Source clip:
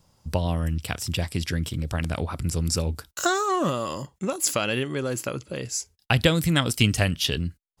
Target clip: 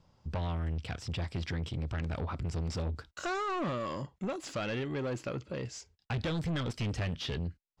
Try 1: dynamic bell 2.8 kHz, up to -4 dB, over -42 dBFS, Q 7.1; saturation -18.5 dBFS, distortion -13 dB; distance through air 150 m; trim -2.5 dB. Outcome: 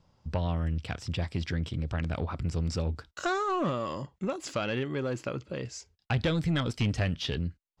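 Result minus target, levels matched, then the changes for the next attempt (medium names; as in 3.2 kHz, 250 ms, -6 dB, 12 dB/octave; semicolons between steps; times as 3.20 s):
saturation: distortion -6 dB
change: saturation -27 dBFS, distortion -7 dB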